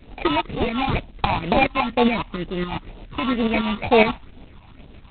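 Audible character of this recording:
aliases and images of a low sample rate 1,600 Hz, jitter 0%
phaser sweep stages 6, 2.1 Hz, lowest notch 430–1,800 Hz
tremolo saw up 7.2 Hz, depth 60%
G.726

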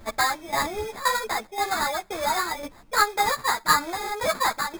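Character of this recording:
tremolo saw down 1.9 Hz, depth 75%
aliases and images of a low sample rate 2,900 Hz, jitter 0%
a shimmering, thickened sound

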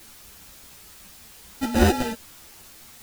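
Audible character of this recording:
aliases and images of a low sample rate 1,100 Hz, jitter 0%
tremolo saw down 5 Hz, depth 55%
a quantiser's noise floor 8 bits, dither triangular
a shimmering, thickened sound

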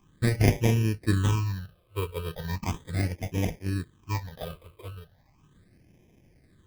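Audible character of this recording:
aliases and images of a low sample rate 1,400 Hz, jitter 0%
phaser sweep stages 8, 0.37 Hz, lowest notch 230–1,300 Hz

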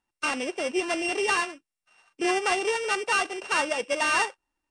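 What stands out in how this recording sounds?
a buzz of ramps at a fixed pitch in blocks of 16 samples
Nellymoser

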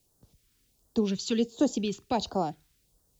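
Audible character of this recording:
a quantiser's noise floor 12 bits, dither triangular
phaser sweep stages 2, 1.4 Hz, lowest notch 610–2,300 Hz

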